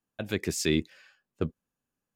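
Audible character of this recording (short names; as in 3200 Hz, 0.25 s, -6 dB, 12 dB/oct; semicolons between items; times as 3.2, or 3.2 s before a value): noise floor -88 dBFS; spectral tilt -4.5 dB/oct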